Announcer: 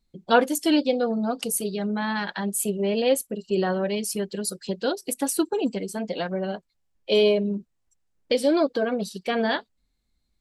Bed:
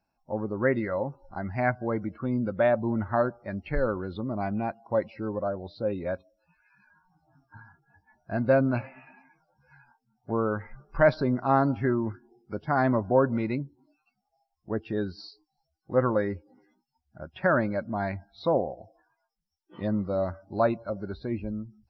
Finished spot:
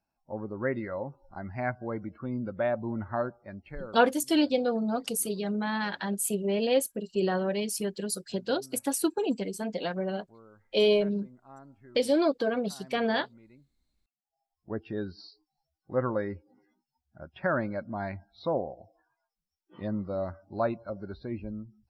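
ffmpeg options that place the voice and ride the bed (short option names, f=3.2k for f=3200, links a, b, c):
-filter_complex "[0:a]adelay=3650,volume=-3.5dB[a];[1:a]volume=17.5dB,afade=t=out:st=3.21:d=0.91:silence=0.0794328,afade=t=in:st=14.21:d=0.4:silence=0.0707946[b];[a][b]amix=inputs=2:normalize=0"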